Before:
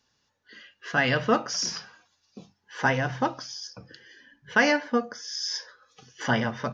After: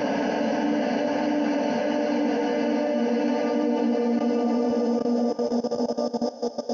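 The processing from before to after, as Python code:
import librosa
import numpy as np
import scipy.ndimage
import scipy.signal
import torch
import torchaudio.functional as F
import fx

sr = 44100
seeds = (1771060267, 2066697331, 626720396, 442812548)

y = fx.echo_stepped(x, sr, ms=572, hz=560.0, octaves=1.4, feedback_pct=70, wet_db=-3.5)
y = fx.paulstretch(y, sr, seeds[0], factor=8.6, window_s=1.0, from_s=4.48)
y = fx.band_shelf(y, sr, hz=1500.0, db=-9.0, octaves=1.1)
y = fx.level_steps(y, sr, step_db=15)
y = fx.tilt_shelf(y, sr, db=7.0, hz=970.0)
y = y * librosa.db_to_amplitude(2.5)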